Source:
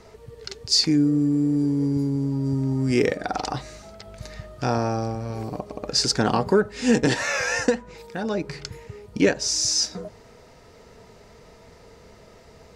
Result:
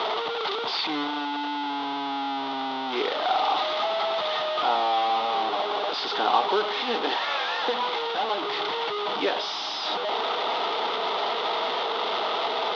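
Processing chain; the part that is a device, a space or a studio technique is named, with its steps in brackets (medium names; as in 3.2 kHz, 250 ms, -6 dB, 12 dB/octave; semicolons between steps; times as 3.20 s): digital answering machine (band-pass 310–3400 Hz; one-bit delta coder 32 kbps, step -19.5 dBFS; cabinet simulation 470–3900 Hz, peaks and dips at 530 Hz -6 dB, 810 Hz +7 dB, 1.2 kHz +4 dB, 1.7 kHz -9 dB, 2.4 kHz -6 dB, 3.5 kHz +8 dB)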